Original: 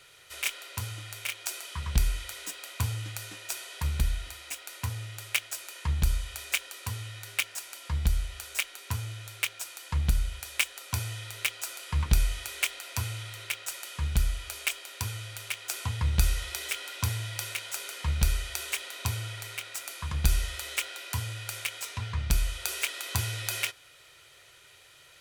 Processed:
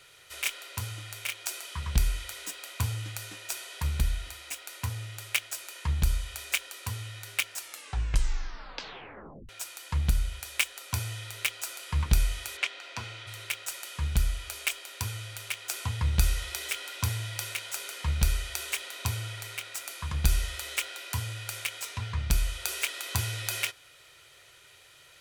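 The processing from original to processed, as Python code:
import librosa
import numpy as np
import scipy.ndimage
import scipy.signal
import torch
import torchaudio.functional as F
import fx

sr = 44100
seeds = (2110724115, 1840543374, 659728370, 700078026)

y = fx.bandpass_edges(x, sr, low_hz=fx.line((12.56, 120.0), (13.26, 230.0)), high_hz=4300.0, at=(12.56, 13.26), fade=0.02)
y = fx.edit(y, sr, fx.tape_stop(start_s=7.57, length_s=1.92), tone=tone)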